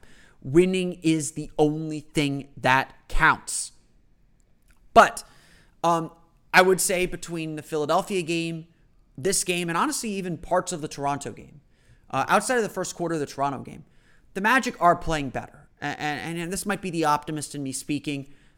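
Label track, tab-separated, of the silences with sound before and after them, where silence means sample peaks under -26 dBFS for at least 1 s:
3.650000	4.960000	silence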